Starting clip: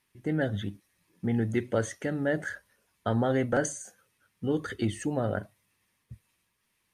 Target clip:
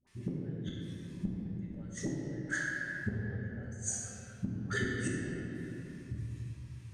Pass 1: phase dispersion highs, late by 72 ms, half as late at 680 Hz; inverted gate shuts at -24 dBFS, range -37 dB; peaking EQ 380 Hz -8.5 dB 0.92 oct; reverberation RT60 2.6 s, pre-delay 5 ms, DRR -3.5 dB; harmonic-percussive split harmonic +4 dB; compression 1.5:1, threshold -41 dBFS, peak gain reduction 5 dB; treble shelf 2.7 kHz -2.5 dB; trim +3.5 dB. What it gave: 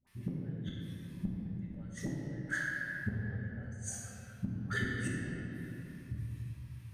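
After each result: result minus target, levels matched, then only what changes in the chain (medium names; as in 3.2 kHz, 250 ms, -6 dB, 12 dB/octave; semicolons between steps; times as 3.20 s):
8 kHz band -5.0 dB; 500 Hz band -4.0 dB
add after compression: resonant low-pass 7.3 kHz, resonance Q 2.3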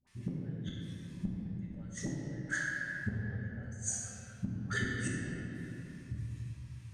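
500 Hz band -4.5 dB
change: peaking EQ 380 Hz -2 dB 0.92 oct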